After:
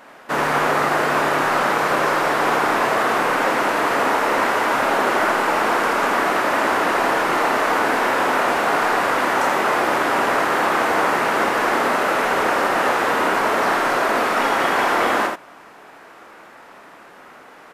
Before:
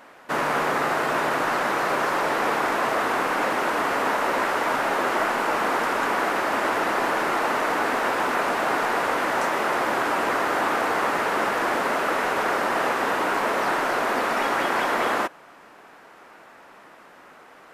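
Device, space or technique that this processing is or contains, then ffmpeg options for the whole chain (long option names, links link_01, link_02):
slapback doubling: -filter_complex "[0:a]asplit=3[link_01][link_02][link_03];[link_02]adelay=28,volume=-7.5dB[link_04];[link_03]adelay=82,volume=-4.5dB[link_05];[link_01][link_04][link_05]amix=inputs=3:normalize=0,volume=3dB"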